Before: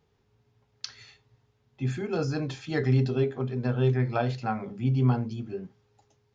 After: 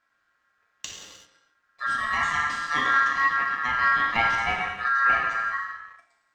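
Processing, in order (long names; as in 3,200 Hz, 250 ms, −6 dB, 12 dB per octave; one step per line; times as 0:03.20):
reverb whose tail is shaped and stops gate 420 ms falling, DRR −1.5 dB
leveller curve on the samples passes 1
ring modulation 1,500 Hz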